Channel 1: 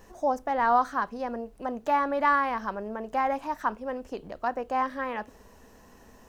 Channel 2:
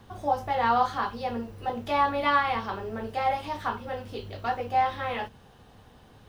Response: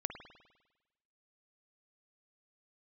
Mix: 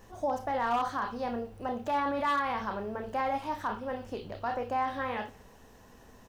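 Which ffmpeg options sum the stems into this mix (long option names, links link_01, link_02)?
-filter_complex "[0:a]volume=-2.5dB[link_01];[1:a]adelay=22,volume=-10dB,asplit=2[link_02][link_03];[link_03]volume=-11.5dB[link_04];[2:a]atrim=start_sample=2205[link_05];[link_04][link_05]afir=irnorm=-1:irlink=0[link_06];[link_01][link_02][link_06]amix=inputs=3:normalize=0,asoftclip=type=hard:threshold=-19dB,alimiter=limit=-23dB:level=0:latency=1:release=22"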